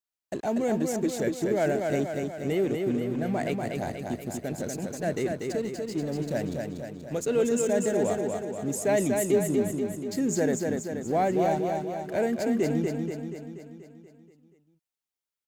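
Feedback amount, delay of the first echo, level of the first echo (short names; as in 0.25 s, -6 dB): 58%, 0.24 s, -4.0 dB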